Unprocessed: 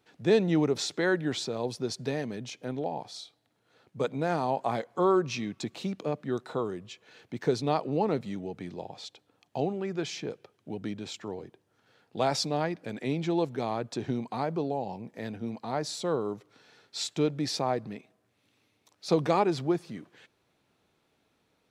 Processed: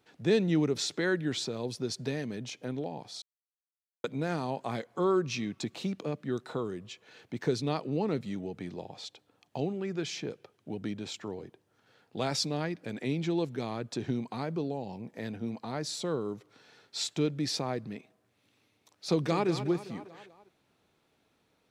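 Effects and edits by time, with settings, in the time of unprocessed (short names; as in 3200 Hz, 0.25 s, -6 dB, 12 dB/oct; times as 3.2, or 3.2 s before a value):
3.22–4.04 mute
19.08–19.48 echo throw 0.2 s, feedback 50%, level -10.5 dB
whole clip: dynamic EQ 770 Hz, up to -8 dB, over -42 dBFS, Q 1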